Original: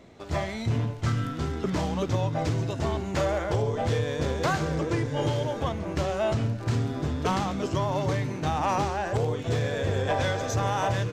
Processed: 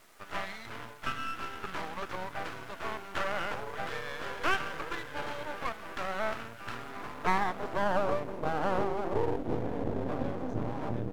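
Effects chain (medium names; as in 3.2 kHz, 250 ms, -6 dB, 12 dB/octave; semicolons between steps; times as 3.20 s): added noise violet -40 dBFS; band-pass sweep 1.4 kHz -> 250 Hz, 6.69–9.85 s; half-wave rectifier; trim +8 dB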